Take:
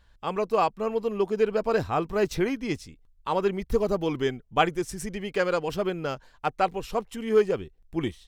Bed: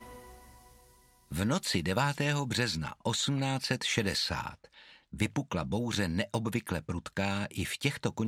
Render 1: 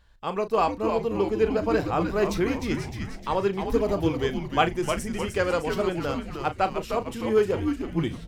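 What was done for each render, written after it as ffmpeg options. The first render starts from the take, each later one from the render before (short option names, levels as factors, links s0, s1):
-filter_complex "[0:a]asplit=2[s0][s1];[s1]adelay=36,volume=0.251[s2];[s0][s2]amix=inputs=2:normalize=0,asplit=8[s3][s4][s5][s6][s7][s8][s9][s10];[s4]adelay=305,afreqshift=-130,volume=0.501[s11];[s5]adelay=610,afreqshift=-260,volume=0.266[s12];[s6]adelay=915,afreqshift=-390,volume=0.141[s13];[s7]adelay=1220,afreqshift=-520,volume=0.075[s14];[s8]adelay=1525,afreqshift=-650,volume=0.0394[s15];[s9]adelay=1830,afreqshift=-780,volume=0.0209[s16];[s10]adelay=2135,afreqshift=-910,volume=0.0111[s17];[s3][s11][s12][s13][s14][s15][s16][s17]amix=inputs=8:normalize=0"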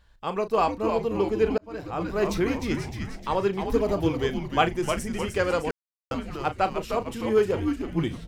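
-filter_complex "[0:a]asplit=4[s0][s1][s2][s3];[s0]atrim=end=1.58,asetpts=PTS-STARTPTS,afade=t=out:st=1.576:d=0.004:c=hsin[s4];[s1]atrim=start=1.58:end=5.71,asetpts=PTS-STARTPTS,afade=t=in:d=0.72,afade=t=out:st=4.126:d=0.004:c=hsin[s5];[s2]atrim=start=5.71:end=6.11,asetpts=PTS-STARTPTS,volume=0[s6];[s3]atrim=start=6.11,asetpts=PTS-STARTPTS,afade=t=in:d=0.004:c=hsin[s7];[s4][s5][s6][s7]concat=n=4:v=0:a=1"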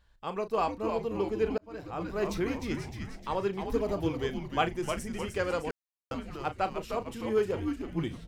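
-af "volume=0.501"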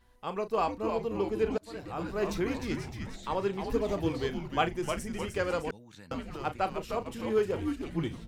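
-filter_complex "[1:a]volume=0.0944[s0];[0:a][s0]amix=inputs=2:normalize=0"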